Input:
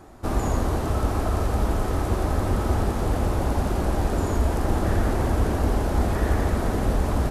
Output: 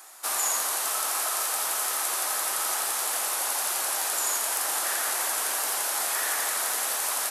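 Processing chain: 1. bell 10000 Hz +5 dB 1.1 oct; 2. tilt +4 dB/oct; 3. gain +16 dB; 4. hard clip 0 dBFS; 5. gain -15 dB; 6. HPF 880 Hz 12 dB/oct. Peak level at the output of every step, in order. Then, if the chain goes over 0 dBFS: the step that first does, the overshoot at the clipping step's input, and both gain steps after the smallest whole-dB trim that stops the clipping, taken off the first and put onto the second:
-9.5, -6.5, +9.5, 0.0, -15.0, -13.5 dBFS; step 3, 9.5 dB; step 3 +6 dB, step 5 -5 dB

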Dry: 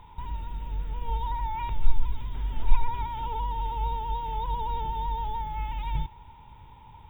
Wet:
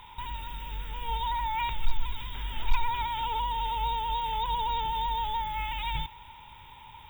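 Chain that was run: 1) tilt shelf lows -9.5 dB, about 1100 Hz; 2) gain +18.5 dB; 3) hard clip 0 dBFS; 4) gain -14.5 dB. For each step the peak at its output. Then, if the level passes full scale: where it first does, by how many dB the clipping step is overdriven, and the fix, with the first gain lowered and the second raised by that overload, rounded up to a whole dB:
-14.5, +4.0, 0.0, -14.5 dBFS; step 2, 4.0 dB; step 2 +14.5 dB, step 4 -10.5 dB

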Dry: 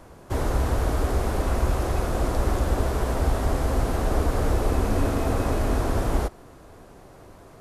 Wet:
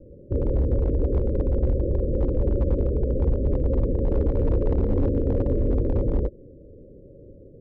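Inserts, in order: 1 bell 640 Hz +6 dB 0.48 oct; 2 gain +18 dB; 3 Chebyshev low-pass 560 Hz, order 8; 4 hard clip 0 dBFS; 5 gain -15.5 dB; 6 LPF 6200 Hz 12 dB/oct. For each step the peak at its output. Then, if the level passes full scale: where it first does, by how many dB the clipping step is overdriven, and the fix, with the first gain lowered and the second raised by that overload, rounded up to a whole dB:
-9.5, +8.5, +7.5, 0.0, -15.5, -15.5 dBFS; step 2, 7.5 dB; step 2 +10 dB, step 5 -7.5 dB

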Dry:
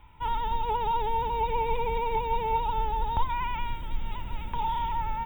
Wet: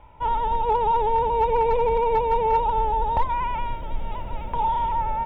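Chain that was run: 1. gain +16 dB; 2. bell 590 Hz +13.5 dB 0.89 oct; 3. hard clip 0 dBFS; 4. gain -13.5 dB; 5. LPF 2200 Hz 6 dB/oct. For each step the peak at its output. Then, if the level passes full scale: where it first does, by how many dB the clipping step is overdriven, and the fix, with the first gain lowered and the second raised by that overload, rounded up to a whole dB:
+1.0, +4.0, 0.0, -13.5, -13.5 dBFS; step 1, 4.0 dB; step 1 +12 dB, step 4 -9.5 dB

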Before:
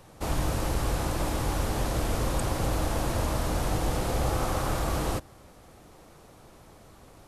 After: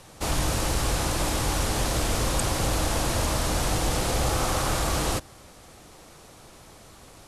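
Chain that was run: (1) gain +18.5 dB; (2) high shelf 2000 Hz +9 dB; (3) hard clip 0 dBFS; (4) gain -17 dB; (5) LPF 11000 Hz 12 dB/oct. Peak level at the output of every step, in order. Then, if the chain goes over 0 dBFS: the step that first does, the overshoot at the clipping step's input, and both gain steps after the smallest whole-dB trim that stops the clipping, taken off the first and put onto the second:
+4.0, +6.0, 0.0, -17.0, -16.0 dBFS; step 1, 6.0 dB; step 1 +12.5 dB, step 4 -11 dB

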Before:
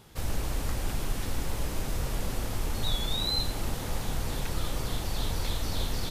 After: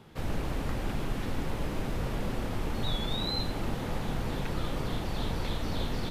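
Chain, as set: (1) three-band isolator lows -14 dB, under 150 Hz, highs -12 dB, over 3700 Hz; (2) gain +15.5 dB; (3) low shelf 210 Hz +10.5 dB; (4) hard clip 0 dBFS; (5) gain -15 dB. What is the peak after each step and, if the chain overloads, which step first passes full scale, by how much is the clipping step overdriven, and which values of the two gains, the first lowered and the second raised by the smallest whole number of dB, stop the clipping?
-21.0, -5.5, -2.5, -2.5, -17.5 dBFS; no overload

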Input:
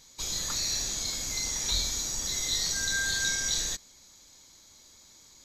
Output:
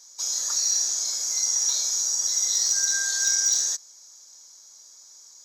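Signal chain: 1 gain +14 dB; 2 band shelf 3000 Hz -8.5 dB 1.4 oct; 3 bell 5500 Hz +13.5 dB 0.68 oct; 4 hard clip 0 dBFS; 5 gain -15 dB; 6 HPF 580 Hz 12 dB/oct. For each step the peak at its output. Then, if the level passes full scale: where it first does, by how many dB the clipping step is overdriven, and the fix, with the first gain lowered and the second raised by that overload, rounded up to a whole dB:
-2.5, -3.5, +5.0, 0.0, -15.0, -14.0 dBFS; step 3, 5.0 dB; step 1 +9 dB, step 5 -10 dB

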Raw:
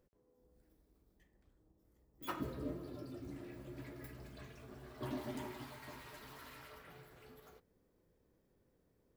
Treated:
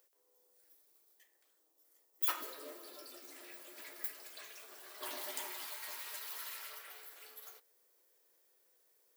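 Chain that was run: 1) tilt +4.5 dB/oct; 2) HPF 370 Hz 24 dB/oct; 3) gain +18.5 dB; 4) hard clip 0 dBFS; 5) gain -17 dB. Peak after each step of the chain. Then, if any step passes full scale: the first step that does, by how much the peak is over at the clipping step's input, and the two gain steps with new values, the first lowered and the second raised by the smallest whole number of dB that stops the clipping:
-20.5, -20.5, -2.0, -2.0, -19.0 dBFS; no overload

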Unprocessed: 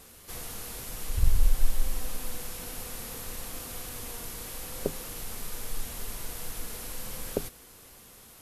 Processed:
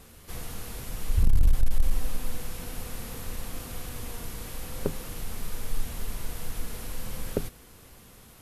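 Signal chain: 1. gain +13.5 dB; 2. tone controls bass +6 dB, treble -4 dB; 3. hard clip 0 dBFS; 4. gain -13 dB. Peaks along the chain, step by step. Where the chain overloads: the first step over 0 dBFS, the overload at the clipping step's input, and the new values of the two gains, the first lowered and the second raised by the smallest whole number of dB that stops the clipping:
+4.5, +10.0, 0.0, -13.0 dBFS; step 1, 10.0 dB; step 1 +3.5 dB, step 4 -3 dB

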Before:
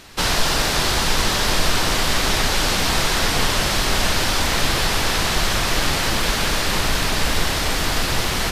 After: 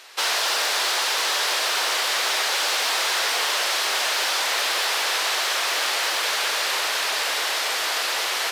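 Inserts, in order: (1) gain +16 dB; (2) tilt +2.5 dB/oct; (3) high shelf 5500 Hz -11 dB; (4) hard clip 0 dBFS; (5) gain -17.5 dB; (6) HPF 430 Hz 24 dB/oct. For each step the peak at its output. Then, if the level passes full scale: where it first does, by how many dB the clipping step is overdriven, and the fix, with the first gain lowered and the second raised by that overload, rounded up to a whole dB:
+11.5, +12.0, +9.0, 0.0, -17.5, -11.0 dBFS; step 1, 9.0 dB; step 1 +7 dB, step 5 -8.5 dB

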